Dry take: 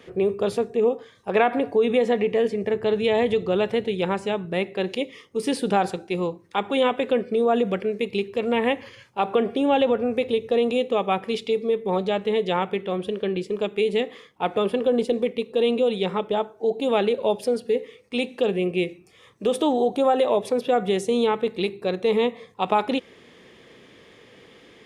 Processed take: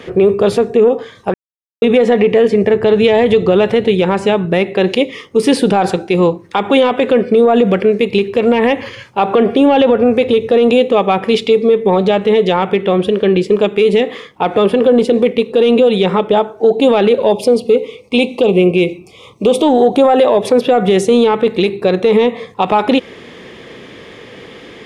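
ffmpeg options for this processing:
-filter_complex "[0:a]asettb=1/sr,asplit=3[s0][s1][s2];[s0]atrim=end=17.324[s3];[s1]atrim=start=17.32:end=19.81,asetpts=PTS-STARTPTS,afade=t=in:d=0.004:c=qsin,afade=t=out:st=2.486:d=0.004:c=qsin,asuperstop=centerf=1600:order=8:qfactor=1.8[s4];[s2]atrim=start=19.806[s5];[s3][s4]acrossfade=d=0.004:c1=hsin:c2=qsin[s6];[s6][s5]acrossfade=d=0.004:c1=qsin:c2=hsin,asplit=3[s7][s8][s9];[s7]atrim=end=1.34,asetpts=PTS-STARTPTS,afade=t=out:st=1.336:d=0.004:c=hsin[s10];[s8]atrim=start=1.34:end=1.82,asetpts=PTS-STARTPTS,volume=0[s11];[s9]atrim=start=1.82,asetpts=PTS-STARTPTS,afade=t=in:d=0.004:c=hsin[s12];[s10][s11][s12]concat=n=3:v=0:a=1,highshelf=f=6100:g=-7,acontrast=71,alimiter=limit=0.266:level=0:latency=1:release=82,volume=2.82"

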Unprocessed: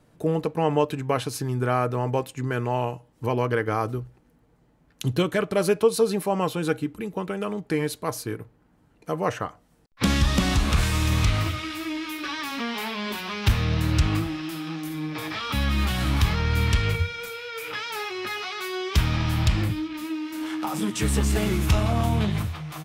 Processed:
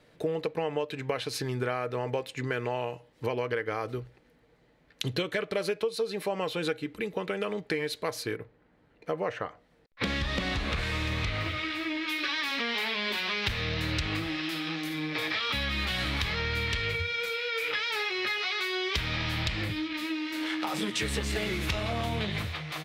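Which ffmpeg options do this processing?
-filter_complex "[0:a]asettb=1/sr,asplit=3[s0][s1][s2];[s0]atrim=end=8.364[s3];[s1]atrim=start=8.36:end=12.08,asetpts=PTS-STARTPTS,afade=t=in:d=0.004:c=qsin,afade=t=out:st=3.716:d=0.004:c=qsin,highshelf=f=3100:g=-10[s4];[s2]atrim=start=12.076[s5];[s3][s4]acrossfade=d=0.004:c1=hsin:c2=qsin[s6];[s6][s5]acrossfade=d=0.004:c1=qsin:c2=hsin,equalizer=f=500:t=o:w=1:g=9,equalizer=f=2000:t=o:w=1:g=11,equalizer=f=4000:t=o:w=1:g=11,acompressor=threshold=0.0891:ratio=6,volume=0.501"

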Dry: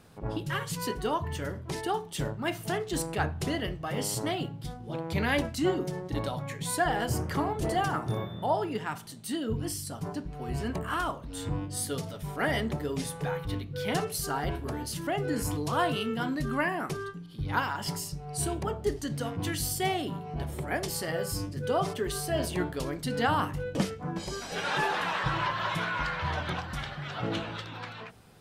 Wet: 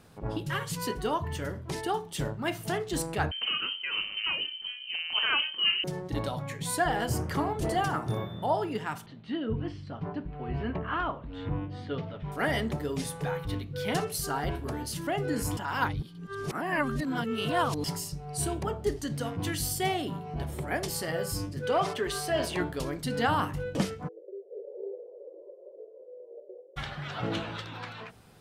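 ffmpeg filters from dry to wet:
-filter_complex "[0:a]asettb=1/sr,asplit=3[s0][s1][s2];[s0]atrim=end=3.314[s3];[s1]atrim=start=3.31:end=5.84,asetpts=PTS-STARTPTS,afade=t=in:d=0.004:c=qsin,afade=t=out:st=2.526:d=0.004:c=qsin,lowpass=f=2700:t=q:w=0.5098,lowpass=f=2700:t=q:w=0.6013,lowpass=f=2700:t=q:w=0.9,lowpass=f=2700:t=q:w=2.563,afreqshift=-3200[s4];[s2]atrim=start=5.836[s5];[s3][s4]acrossfade=d=0.004:c1=hsin:c2=qsin[s6];[s6][s5]acrossfade=d=0.004:c1=qsin:c2=hsin,asettb=1/sr,asplit=3[s7][s8][s9];[s7]atrim=end=9.064[s10];[s8]atrim=start=9.06:end=12.32,asetpts=PTS-STARTPTS,afade=t=in:d=0.004:c=qsin,afade=t=out:st=3.256:d=0.004:c=qsin,lowpass=f=3100:w=0.5412,lowpass=f=3100:w=1.3066[s11];[s9]atrim=start=12.316[s12];[s10][s11]acrossfade=d=0.004:c1=hsin:c2=qsin[s13];[s13][s12]acrossfade=d=0.004:c1=qsin:c2=hsin,asettb=1/sr,asplit=3[s14][s15][s16];[s14]atrim=end=21.594[s17];[s15]atrim=start=21.59:end=22.61,asetpts=PTS-STARTPTS,afade=t=in:d=0.004:c=qsin,afade=t=out:st=1.016:d=0.004:c=qsin,asplit=2[s18][s19];[s19]highpass=f=720:p=1,volume=3.16,asoftclip=type=tanh:threshold=0.15[s20];[s18][s20]amix=inputs=2:normalize=0,lowpass=f=3900:p=1,volume=0.501[s21];[s16]atrim=start=22.606[s22];[s17][s21]acrossfade=d=0.004:c1=hsin:c2=qsin[s23];[s23][s22]acrossfade=d=0.004:c1=qsin:c2=hsin,asplit=3[s24][s25][s26];[s24]afade=t=out:st=24.07:d=0.02[s27];[s25]asuperpass=centerf=460:order=8:qfactor=2.6,afade=t=in:st=24.07:d=0.02,afade=t=out:st=26.76:d=0.02[s28];[s26]afade=t=in:st=26.76:d=0.02[s29];[s27][s28][s29]amix=inputs=3:normalize=0,asplit=3[s30][s31][s32];[s30]atrim=end=15.572[s33];[s31]atrim=start=15.568:end=17.842,asetpts=PTS-STARTPTS,areverse[s34];[s32]atrim=start=17.838[s35];[s33][s34]acrossfade=d=0.004:c1=hsin:c2=hsin[s36];[s36][s35]acrossfade=d=0.004:c1=hsin:c2=hsin"

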